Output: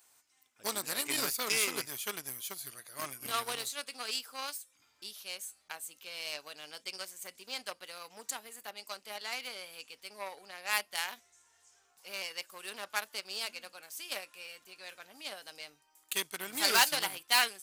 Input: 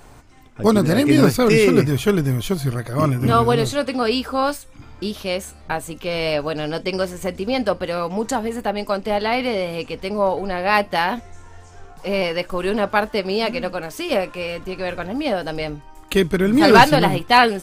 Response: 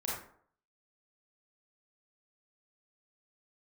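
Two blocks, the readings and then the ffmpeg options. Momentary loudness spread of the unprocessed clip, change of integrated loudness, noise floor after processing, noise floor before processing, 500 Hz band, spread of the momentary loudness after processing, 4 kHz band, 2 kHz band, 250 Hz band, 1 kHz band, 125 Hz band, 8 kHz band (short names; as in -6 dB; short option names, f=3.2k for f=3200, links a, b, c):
13 LU, -15.5 dB, -70 dBFS, -44 dBFS, -26.0 dB, 17 LU, -8.0 dB, -13.0 dB, -31.5 dB, -19.5 dB, -37.0 dB, -1.5 dB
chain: -af "aeval=exprs='0.841*(cos(1*acos(clip(val(0)/0.841,-1,1)))-cos(1*PI/2))+0.0668*(cos(7*acos(clip(val(0)/0.841,-1,1)))-cos(7*PI/2))':c=same,aderivative,volume=-1dB"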